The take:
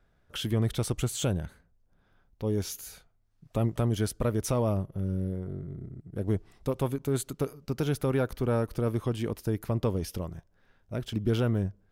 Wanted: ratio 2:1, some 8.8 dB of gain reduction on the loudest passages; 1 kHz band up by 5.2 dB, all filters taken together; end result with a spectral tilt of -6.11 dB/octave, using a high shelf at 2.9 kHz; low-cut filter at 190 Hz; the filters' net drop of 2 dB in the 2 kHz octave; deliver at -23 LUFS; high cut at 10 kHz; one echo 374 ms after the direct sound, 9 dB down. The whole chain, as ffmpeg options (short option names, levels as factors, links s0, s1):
-af "highpass=190,lowpass=10000,equalizer=f=1000:t=o:g=9,equalizer=f=2000:t=o:g=-5,highshelf=f=2900:g=-7,acompressor=threshold=0.0112:ratio=2,aecho=1:1:374:0.355,volume=7.08"